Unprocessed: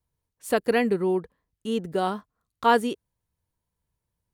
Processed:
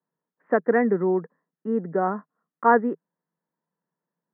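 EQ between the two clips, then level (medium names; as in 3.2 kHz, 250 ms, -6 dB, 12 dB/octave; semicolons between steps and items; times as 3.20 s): Chebyshev band-pass 160–1900 Hz, order 5; +2.5 dB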